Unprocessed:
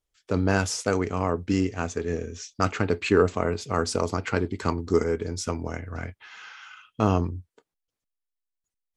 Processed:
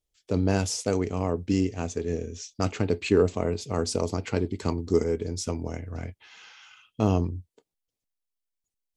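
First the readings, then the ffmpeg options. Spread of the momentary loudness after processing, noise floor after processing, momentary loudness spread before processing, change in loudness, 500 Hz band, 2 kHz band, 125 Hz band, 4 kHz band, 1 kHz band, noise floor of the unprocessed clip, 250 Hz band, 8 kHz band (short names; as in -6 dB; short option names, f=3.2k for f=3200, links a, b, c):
11 LU, under -85 dBFS, 15 LU, -1.5 dB, -1.0 dB, -7.5 dB, 0.0 dB, -1.0 dB, -6.0 dB, under -85 dBFS, -0.5 dB, -0.5 dB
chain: -af "equalizer=f=1.4k:w=1.2:g=-10.5"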